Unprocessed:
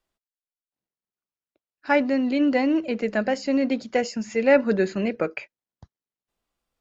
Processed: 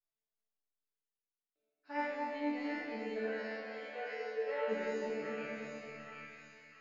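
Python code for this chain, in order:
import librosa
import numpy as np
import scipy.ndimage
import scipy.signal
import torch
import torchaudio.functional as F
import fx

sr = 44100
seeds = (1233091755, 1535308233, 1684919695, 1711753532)

y = fx.spec_trails(x, sr, decay_s=2.22)
y = fx.cabinet(y, sr, low_hz=460.0, low_slope=24, high_hz=3800.0, hz=(470.0, 710.0, 1100.0, 1600.0, 2300.0, 3500.0), db=(9, -3, 7, 7, -4, 4), at=(3.23, 4.67), fade=0.02)
y = fx.resonator_bank(y, sr, root=50, chord='fifth', decay_s=0.72)
y = fx.echo_split(y, sr, split_hz=1200.0, low_ms=231, high_ms=748, feedback_pct=52, wet_db=-4.0)
y = y * 10.0 ** (-3.5 / 20.0)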